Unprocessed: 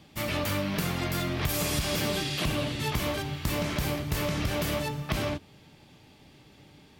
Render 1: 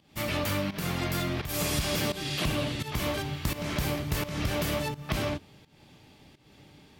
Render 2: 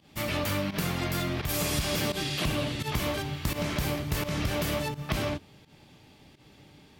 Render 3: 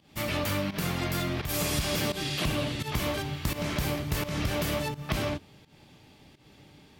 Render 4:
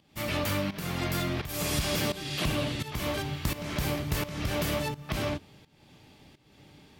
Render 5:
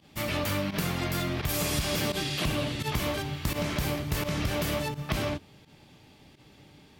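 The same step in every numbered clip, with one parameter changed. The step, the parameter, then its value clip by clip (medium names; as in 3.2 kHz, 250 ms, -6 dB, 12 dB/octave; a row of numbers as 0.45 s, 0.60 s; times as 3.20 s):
volume shaper, release: 263 ms, 115 ms, 170 ms, 423 ms, 79 ms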